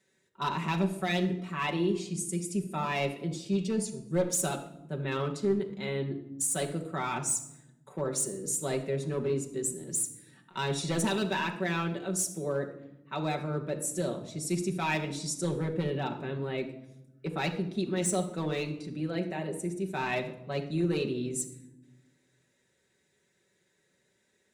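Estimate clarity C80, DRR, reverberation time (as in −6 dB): 13.5 dB, 1.0 dB, 0.90 s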